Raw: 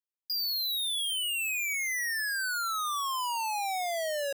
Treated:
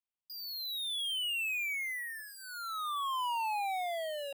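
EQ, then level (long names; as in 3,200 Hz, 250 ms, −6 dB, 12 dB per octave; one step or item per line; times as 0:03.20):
high-shelf EQ 7,300 Hz −9 dB
phaser with its sweep stopped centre 1,600 Hz, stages 6
−1.0 dB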